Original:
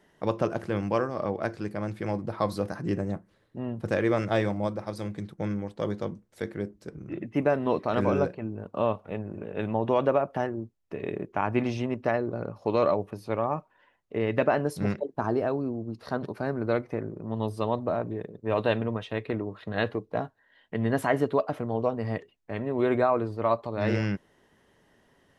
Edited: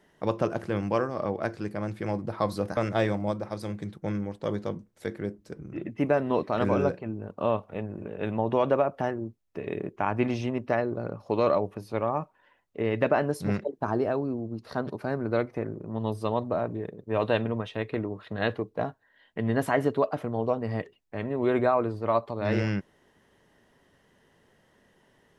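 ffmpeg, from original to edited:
ffmpeg -i in.wav -filter_complex "[0:a]asplit=2[link_01][link_02];[link_01]atrim=end=2.772[link_03];[link_02]atrim=start=4.128[link_04];[link_03][link_04]acrossfade=duration=0.004:curve1=hsin:curve2=hsin" out.wav

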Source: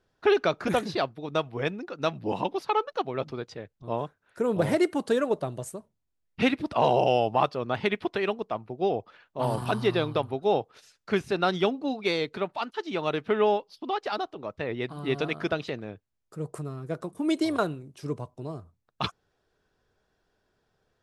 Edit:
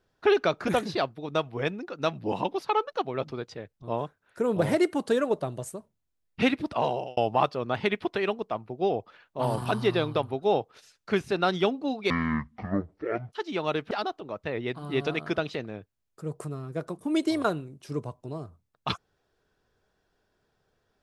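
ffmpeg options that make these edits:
ffmpeg -i in.wav -filter_complex "[0:a]asplit=5[link_01][link_02][link_03][link_04][link_05];[link_01]atrim=end=7.17,asetpts=PTS-STARTPTS,afade=type=out:start_time=6.64:duration=0.53[link_06];[link_02]atrim=start=7.17:end=12.104,asetpts=PTS-STARTPTS,afade=type=in:duration=0.004:curve=hsin[link_07];[link_03]atrim=start=12.1:end=12.71,asetpts=PTS-STARTPTS,asetrate=22050,aresample=44100[link_08];[link_04]atrim=start=12.706:end=13.302[link_09];[link_05]atrim=start=14.048[link_10];[link_06][link_07]concat=n=2:v=0:a=1[link_11];[link_11][link_08]acrossfade=duration=0.004:curve1=hsin:curve2=hsin[link_12];[link_12][link_09]acrossfade=duration=0.004:curve1=hsin:curve2=hsin[link_13];[link_13][link_10]acrossfade=duration=0.004:curve1=hsin:curve2=hsin" out.wav

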